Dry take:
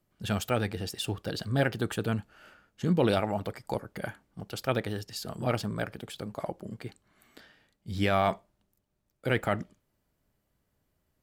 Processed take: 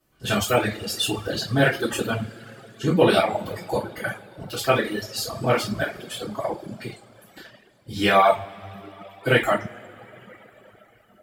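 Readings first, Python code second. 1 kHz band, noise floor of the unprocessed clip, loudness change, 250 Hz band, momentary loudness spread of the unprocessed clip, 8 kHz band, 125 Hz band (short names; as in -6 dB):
+9.5 dB, -78 dBFS, +8.0 dB, +5.5 dB, 14 LU, +10.5 dB, +3.5 dB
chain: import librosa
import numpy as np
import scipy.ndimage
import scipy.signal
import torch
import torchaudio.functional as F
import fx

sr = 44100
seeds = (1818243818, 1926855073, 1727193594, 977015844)

y = fx.low_shelf(x, sr, hz=290.0, db=-5.5)
y = fx.rev_double_slope(y, sr, seeds[0], early_s=0.44, late_s=4.1, knee_db=-17, drr_db=-9.5)
y = fx.dereverb_blind(y, sr, rt60_s=1.9)
y = y * librosa.db_to_amplitude(2.0)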